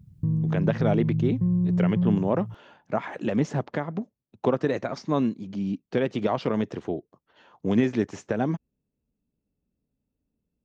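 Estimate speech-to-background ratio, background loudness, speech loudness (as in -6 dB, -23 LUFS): -2.0 dB, -26.0 LUFS, -28.0 LUFS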